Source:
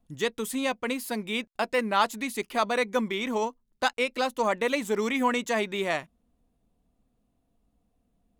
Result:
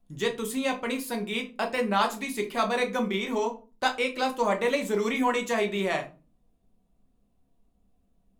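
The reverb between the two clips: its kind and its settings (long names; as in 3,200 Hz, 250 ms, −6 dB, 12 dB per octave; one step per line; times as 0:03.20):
rectangular room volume 160 cubic metres, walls furnished, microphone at 1.1 metres
level −2 dB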